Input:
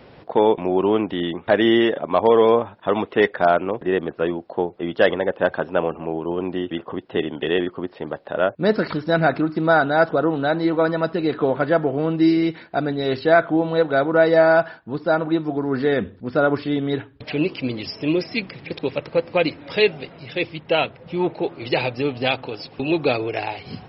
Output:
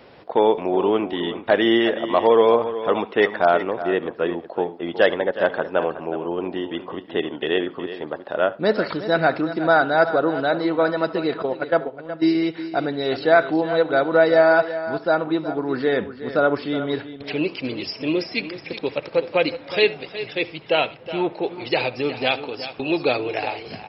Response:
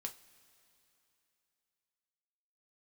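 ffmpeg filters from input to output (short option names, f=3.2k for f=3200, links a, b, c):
-filter_complex "[0:a]bass=f=250:g=-7,treble=f=4k:g=2,asettb=1/sr,asplit=3[a][b][c];[a]atrim=end=11.424[d];[b]atrim=start=11.42:end=12.35,asetpts=PTS-STARTPTS,afade=t=in:d=0.004:c=qsin,afade=t=out:st=0.926:d=0.004:c=qsin,agate=range=-16dB:threshold=-18dB:ratio=16:detection=peak[e];[c]atrim=start=12.346[f];[d][e]acrossfade=d=0.004:c1=hsin:c2=qsin[g];[g][f]acrossfade=d=0.004:c1=qsin:c2=hsin,aecho=1:1:368:0.237,asplit=2[h][i];[1:a]atrim=start_sample=2205,lowpass=4.2k,adelay=70[j];[i][j]afir=irnorm=-1:irlink=0,volume=-15.5dB[k];[h][k]amix=inputs=2:normalize=0"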